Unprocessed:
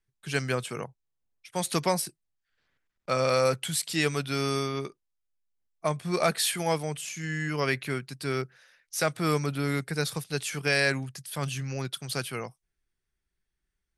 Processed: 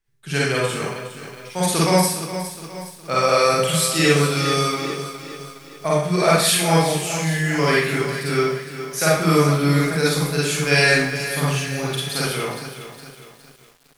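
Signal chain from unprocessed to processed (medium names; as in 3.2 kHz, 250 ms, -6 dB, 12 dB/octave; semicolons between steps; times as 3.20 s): Schroeder reverb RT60 0.61 s, DRR -6.5 dB; bit-crushed delay 413 ms, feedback 55%, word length 7-bit, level -11 dB; trim +2.5 dB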